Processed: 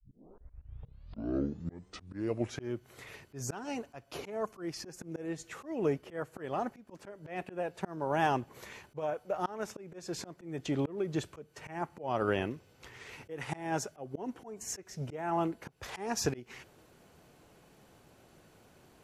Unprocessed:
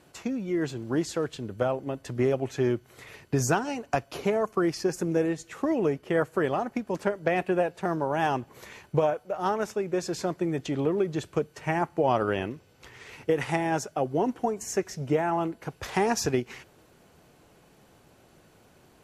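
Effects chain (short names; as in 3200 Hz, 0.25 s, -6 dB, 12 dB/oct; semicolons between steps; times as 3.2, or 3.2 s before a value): tape start at the beginning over 2.72 s; auto swell 0.29 s; gain -2.5 dB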